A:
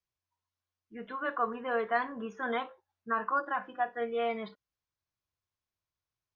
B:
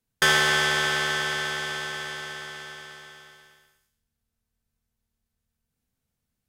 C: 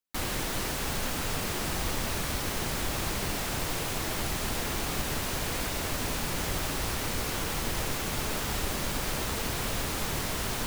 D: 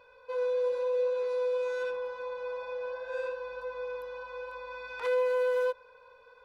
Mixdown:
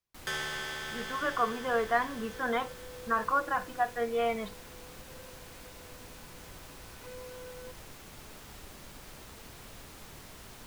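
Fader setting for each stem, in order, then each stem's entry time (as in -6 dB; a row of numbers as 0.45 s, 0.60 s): +2.0 dB, -15.5 dB, -17.5 dB, -19.5 dB; 0.00 s, 0.05 s, 0.00 s, 2.00 s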